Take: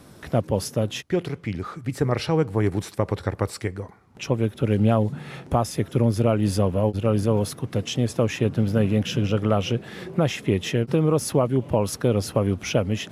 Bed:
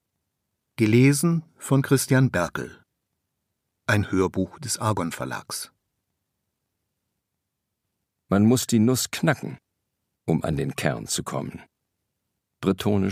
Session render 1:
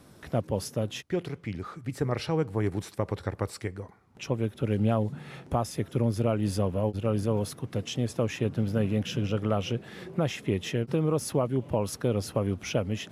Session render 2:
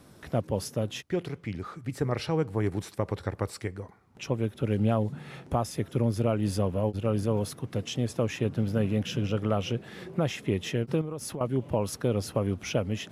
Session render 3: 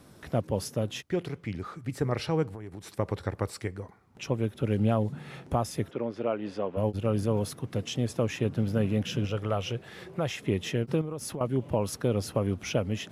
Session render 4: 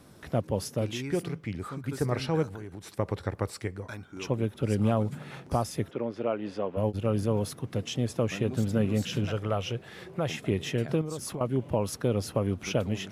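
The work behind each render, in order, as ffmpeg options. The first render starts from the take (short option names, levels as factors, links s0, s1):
-af "volume=0.501"
-filter_complex "[0:a]asettb=1/sr,asplit=3[s0][s1][s2];[s0]atrim=end=11.014[s3];[s1]atrim=start=11.01:end=11.41,asetpts=PTS-STARTPTS,afade=t=in:d=0.004:c=qsin,afade=t=out:st=0.396:d=0.004:c=qsin,acompressor=threshold=0.0251:ratio=6:attack=3.2:release=140:knee=1:detection=peak[s4];[s2]atrim=start=11.406[s5];[s3][s4]acrossfade=d=0.004:c1=hsin:c2=qsin[s6];[s6][s5]acrossfade=d=0.004:c1=qsin:c2=hsin"
-filter_complex "[0:a]asplit=3[s0][s1][s2];[s0]afade=t=out:st=2.48:d=0.02[s3];[s1]acompressor=threshold=0.0141:ratio=6:attack=3.2:release=140:knee=1:detection=peak,afade=t=in:st=2.48:d=0.02,afade=t=out:st=2.91:d=0.02[s4];[s2]afade=t=in:st=2.91:d=0.02[s5];[s3][s4][s5]amix=inputs=3:normalize=0,asplit=3[s6][s7][s8];[s6]afade=t=out:st=5.9:d=0.02[s9];[s7]highpass=330,lowpass=2800,afade=t=in:st=5.9:d=0.02,afade=t=out:st=6.76:d=0.02[s10];[s8]afade=t=in:st=6.76:d=0.02[s11];[s9][s10][s11]amix=inputs=3:normalize=0,asettb=1/sr,asplit=3[s12][s13][s14];[s12]atrim=end=9.254[s15];[s13]atrim=start=9.25:end=10.42,asetpts=PTS-STARTPTS,afade=t=in:d=0.004:c=qsin,afade=t=out:st=1.166:d=0.004:c=qsin,equalizer=f=230:w=1.2:g=-8[s16];[s14]atrim=start=10.416[s17];[s15][s16]acrossfade=d=0.004:c1=hsin:c2=qsin[s18];[s18][s17]acrossfade=d=0.004:c1=qsin:c2=hsin"
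-filter_complex "[1:a]volume=0.1[s0];[0:a][s0]amix=inputs=2:normalize=0"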